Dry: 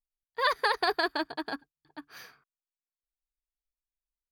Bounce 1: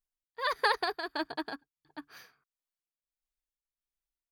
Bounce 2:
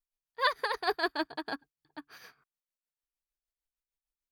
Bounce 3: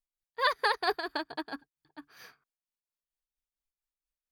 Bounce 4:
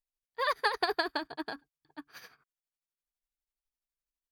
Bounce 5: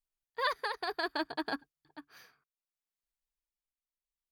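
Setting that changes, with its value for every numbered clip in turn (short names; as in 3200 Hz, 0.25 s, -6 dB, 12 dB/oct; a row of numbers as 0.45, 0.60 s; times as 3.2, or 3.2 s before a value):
tremolo, rate: 1.5, 6.6, 4.4, 12, 0.65 Hz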